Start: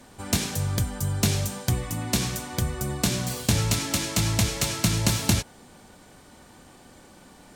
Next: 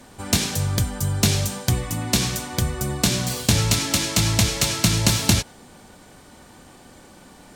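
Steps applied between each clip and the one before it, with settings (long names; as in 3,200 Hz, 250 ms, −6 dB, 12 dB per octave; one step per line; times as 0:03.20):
dynamic equaliser 4,200 Hz, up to +3 dB, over −39 dBFS, Q 0.78
level +3.5 dB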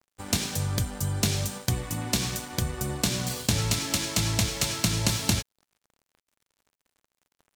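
downward compressor 1.5 to 1, threshold −23 dBFS, peak gain reduction 4.5 dB
dead-zone distortion −39 dBFS
level −2.5 dB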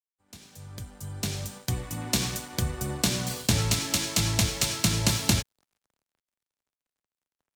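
fade in at the beginning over 2.20 s
multiband upward and downward expander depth 40%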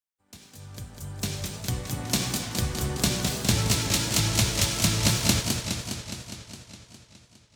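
feedback echo with a swinging delay time 206 ms, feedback 70%, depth 195 cents, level −5.5 dB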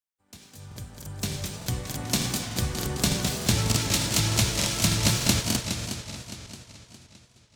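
regular buffer underruns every 0.30 s, samples 2,048, repeat, from 0:00.67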